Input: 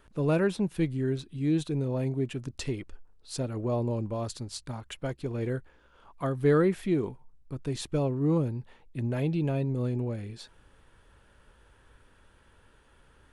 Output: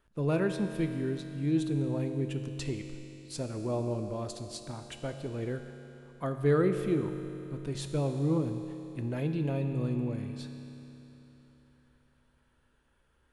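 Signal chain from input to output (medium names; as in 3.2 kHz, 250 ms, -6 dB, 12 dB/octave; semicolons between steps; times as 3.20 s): gate -48 dBFS, range -8 dB; reverberation RT60 3.5 s, pre-delay 6 ms, DRR 6 dB; trim -3.5 dB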